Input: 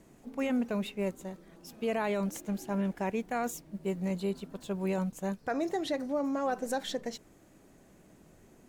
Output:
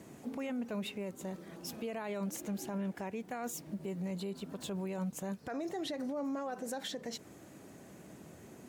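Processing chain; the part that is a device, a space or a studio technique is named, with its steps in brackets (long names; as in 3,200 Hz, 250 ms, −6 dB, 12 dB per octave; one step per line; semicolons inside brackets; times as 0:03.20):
podcast mastering chain (high-pass filter 75 Hz 24 dB per octave; downward compressor 3 to 1, threshold −39 dBFS, peak gain reduction 10 dB; brickwall limiter −37 dBFS, peak gain reduction 10.5 dB; level +6.5 dB; MP3 96 kbit/s 48,000 Hz)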